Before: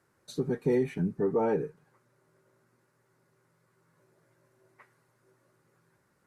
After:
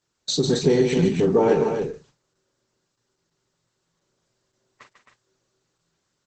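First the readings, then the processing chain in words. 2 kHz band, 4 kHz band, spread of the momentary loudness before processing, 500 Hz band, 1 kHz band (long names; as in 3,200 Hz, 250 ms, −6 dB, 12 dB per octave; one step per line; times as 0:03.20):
+10.5 dB, can't be measured, 10 LU, +9.5 dB, +9.0 dB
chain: flat-topped bell 4,700 Hz +14 dB
noise gate −54 dBFS, range −19 dB
double-tracking delay 42 ms −8 dB
in parallel at −0.5 dB: downward compressor 8 to 1, threshold −34 dBFS, peak gain reduction 13 dB
on the sum: loudspeakers that aren't time-aligned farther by 50 metres −8 dB, 91 metres −7 dB
level +6 dB
Opus 12 kbit/s 48,000 Hz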